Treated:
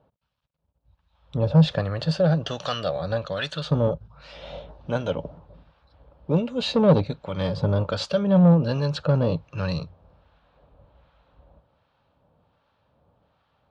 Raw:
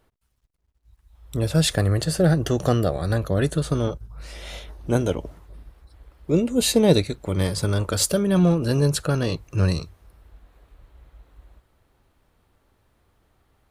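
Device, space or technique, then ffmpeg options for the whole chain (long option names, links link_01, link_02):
guitar amplifier with harmonic tremolo: -filter_complex "[0:a]asettb=1/sr,asplit=3[link_01][link_02][link_03];[link_01]atrim=end=2.114[link_04];[link_02]atrim=start=2.11:end=3.71,asetpts=PTS-STARTPTS,afade=type=in:duration=0.004:curve=qsin,afade=type=out:start_time=1.596:duration=0.004:curve=qsin,tiltshelf=frequency=1100:gain=-9.5[link_05];[link_03]atrim=start=3.706[link_06];[link_04][link_05]acrossfade=duration=0.004:curve1=hsin:curve2=qsin[link_07];[link_07][link_06]acrossfade=duration=0.004:curve1=qsin:curve2=hsin,acrossover=split=980[link_08][link_09];[link_08]aeval=exprs='val(0)*(1-0.7/2+0.7/2*cos(2*PI*1.3*n/s))':channel_layout=same[link_10];[link_09]aeval=exprs='val(0)*(1-0.7/2-0.7/2*cos(2*PI*1.3*n/s))':channel_layout=same[link_11];[link_10][link_11]amix=inputs=2:normalize=0,asoftclip=type=tanh:threshold=-17dB,highpass=86,equalizer=frequency=160:width_type=q:width=4:gain=6,equalizer=frequency=360:width_type=q:width=4:gain=-9,equalizer=frequency=560:width_type=q:width=4:gain=8,equalizer=frequency=890:width_type=q:width=4:gain=4,equalizer=frequency=2000:width_type=q:width=4:gain=-9,lowpass=frequency=4100:width=0.5412,lowpass=frequency=4100:width=1.3066,volume=3dB"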